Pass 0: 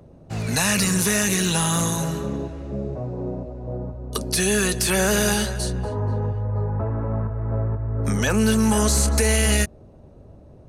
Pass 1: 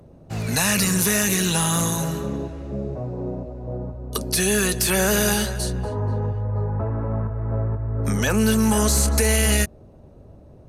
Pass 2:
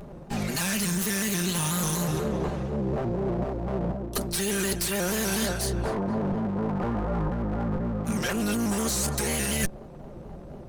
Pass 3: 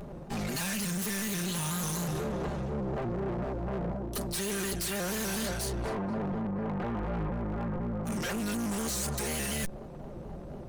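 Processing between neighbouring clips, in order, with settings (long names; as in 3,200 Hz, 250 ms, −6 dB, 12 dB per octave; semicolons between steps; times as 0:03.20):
parametric band 13,000 Hz +8 dB 0.27 octaves
lower of the sound and its delayed copy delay 5.3 ms; reversed playback; downward compressor 10 to 1, threshold −31 dBFS, peak gain reduction 14.5 dB; reversed playback; pitch modulation by a square or saw wave square 4.1 Hz, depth 100 cents; level +7 dB
soft clipping −29.5 dBFS, distortion −10 dB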